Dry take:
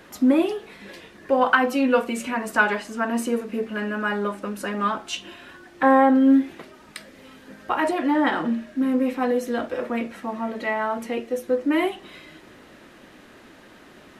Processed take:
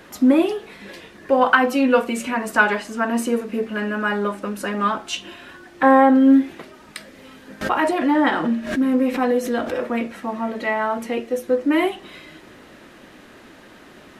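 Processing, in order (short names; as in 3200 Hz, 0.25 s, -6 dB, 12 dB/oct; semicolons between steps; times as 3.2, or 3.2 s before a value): 7.61–9.87 backwards sustainer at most 92 dB/s; gain +3 dB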